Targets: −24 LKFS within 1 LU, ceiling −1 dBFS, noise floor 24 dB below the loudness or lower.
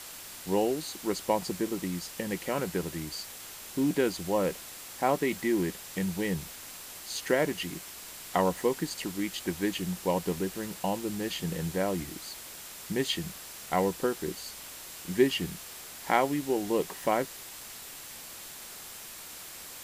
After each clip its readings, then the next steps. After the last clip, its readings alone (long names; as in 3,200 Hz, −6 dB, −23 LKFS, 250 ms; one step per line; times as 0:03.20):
interfering tone 7,600 Hz; level of the tone −55 dBFS; background noise floor −45 dBFS; target noise floor −56 dBFS; integrated loudness −32.0 LKFS; sample peak −9.5 dBFS; target loudness −24.0 LKFS
→ notch filter 7,600 Hz, Q 30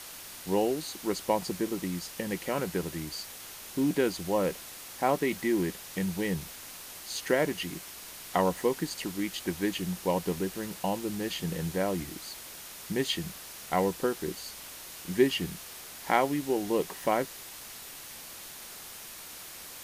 interfering tone none found; background noise floor −45 dBFS; target noise floor −56 dBFS
→ broadband denoise 11 dB, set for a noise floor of −45 dBFS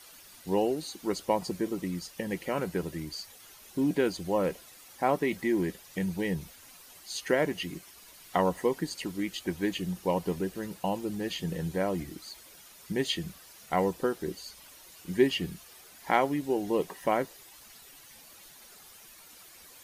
background noise floor −53 dBFS; target noise floor −55 dBFS
→ broadband denoise 6 dB, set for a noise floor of −53 dBFS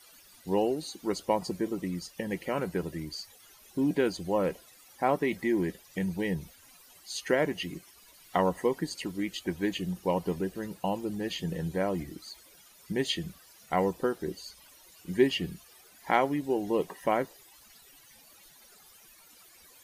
background noise floor −57 dBFS; integrated loudness −31.0 LKFS; sample peak −9.5 dBFS; target loudness −24.0 LKFS
→ level +7 dB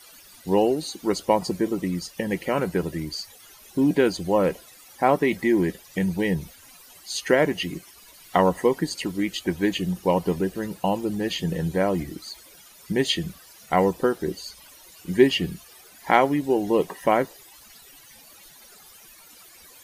integrated loudness −24.0 LKFS; sample peak −2.5 dBFS; background noise floor −50 dBFS